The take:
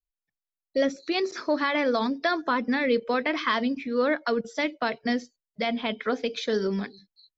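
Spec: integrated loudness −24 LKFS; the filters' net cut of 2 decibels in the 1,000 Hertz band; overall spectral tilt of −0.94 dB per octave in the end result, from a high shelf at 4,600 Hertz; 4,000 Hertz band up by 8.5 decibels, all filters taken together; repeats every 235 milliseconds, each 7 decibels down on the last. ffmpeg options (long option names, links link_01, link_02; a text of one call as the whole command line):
ffmpeg -i in.wav -af "equalizer=frequency=1000:width_type=o:gain=-3.5,equalizer=frequency=4000:width_type=o:gain=6.5,highshelf=frequency=4600:gain=8.5,aecho=1:1:235|470|705|940|1175:0.447|0.201|0.0905|0.0407|0.0183,volume=0.5dB" out.wav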